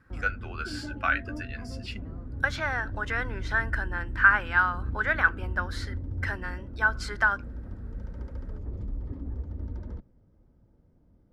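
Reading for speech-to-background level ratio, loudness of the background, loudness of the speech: 10.5 dB, −38.0 LKFS, −27.5 LKFS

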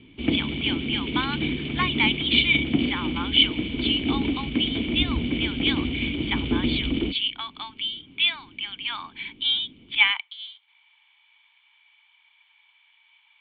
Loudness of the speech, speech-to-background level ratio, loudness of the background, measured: −25.5 LKFS, 1.5 dB, −27.0 LKFS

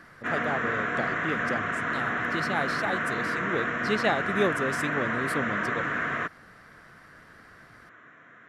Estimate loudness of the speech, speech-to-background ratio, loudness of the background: −32.5 LKFS, −4.0 dB, −28.5 LKFS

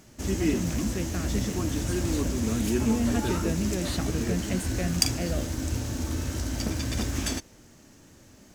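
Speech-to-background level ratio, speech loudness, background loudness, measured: −4.5 dB, −33.5 LKFS, −29.0 LKFS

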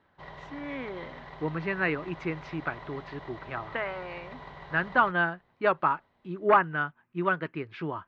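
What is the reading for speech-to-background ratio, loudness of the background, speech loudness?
16.0 dB, −45.5 LKFS, −29.5 LKFS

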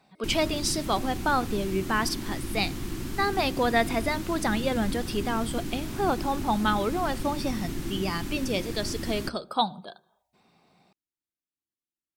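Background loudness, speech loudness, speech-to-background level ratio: −35.0 LKFS, −28.5 LKFS, 6.5 dB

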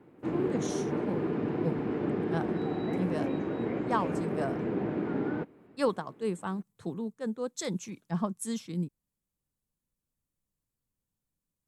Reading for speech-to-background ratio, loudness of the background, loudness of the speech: −3.0 dB, −32.5 LKFS, −35.5 LKFS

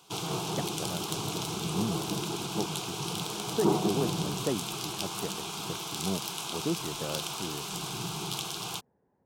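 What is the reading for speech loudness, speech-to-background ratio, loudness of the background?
−38.0 LKFS, −5.0 dB, −33.0 LKFS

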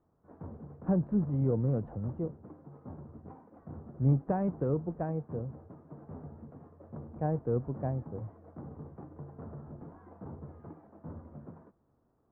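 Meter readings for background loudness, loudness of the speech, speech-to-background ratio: −48.5 LKFS, −32.5 LKFS, 16.0 dB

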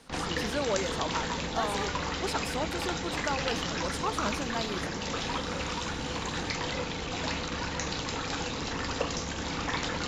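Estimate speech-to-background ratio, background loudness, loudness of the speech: −3.0 dB, −32.5 LKFS, −35.5 LKFS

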